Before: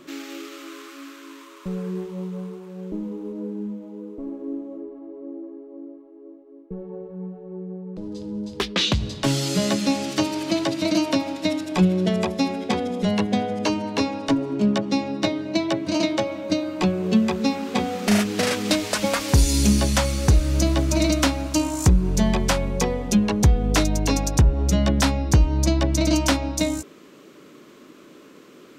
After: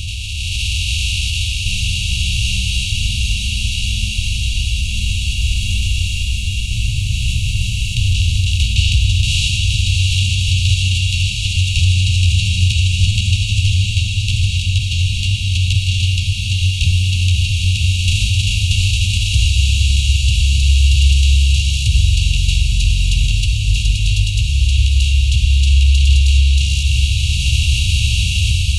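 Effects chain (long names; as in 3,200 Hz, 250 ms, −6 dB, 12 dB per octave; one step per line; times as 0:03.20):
compressor on every frequency bin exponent 0.2
Chebyshev band-stop filter 170–3,300 Hz, order 5
downward compressor 4 to 1, threshold −11 dBFS, peak gain reduction 4 dB
formants moved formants −5 semitones
automatic gain control gain up to 11.5 dB
thirty-one-band graphic EQ 160 Hz −12 dB, 2,000 Hz −11 dB, 5,000 Hz −8 dB
on a send: feedback delay with all-pass diffusion 731 ms, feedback 70%, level −5 dB
on the sum: level −2.5 dB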